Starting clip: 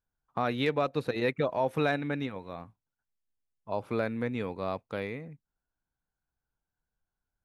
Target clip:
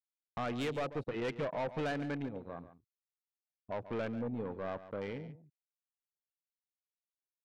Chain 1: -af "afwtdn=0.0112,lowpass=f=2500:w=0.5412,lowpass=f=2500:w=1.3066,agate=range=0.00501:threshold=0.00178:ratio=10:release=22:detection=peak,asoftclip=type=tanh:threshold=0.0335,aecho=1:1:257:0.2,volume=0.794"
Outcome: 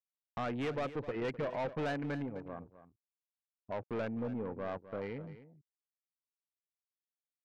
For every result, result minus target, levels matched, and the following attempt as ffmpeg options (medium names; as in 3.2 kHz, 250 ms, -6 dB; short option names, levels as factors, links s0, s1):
echo 116 ms late; 8 kHz band -4.5 dB
-af "afwtdn=0.0112,lowpass=f=2500:w=0.5412,lowpass=f=2500:w=1.3066,agate=range=0.00501:threshold=0.00178:ratio=10:release=22:detection=peak,asoftclip=type=tanh:threshold=0.0335,aecho=1:1:141:0.2,volume=0.794"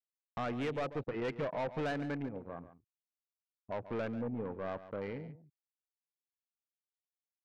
8 kHz band -4.5 dB
-af "afwtdn=0.0112,lowpass=f=9000:w=0.5412,lowpass=f=9000:w=1.3066,agate=range=0.00501:threshold=0.00178:ratio=10:release=22:detection=peak,asoftclip=type=tanh:threshold=0.0335,aecho=1:1:141:0.2,volume=0.794"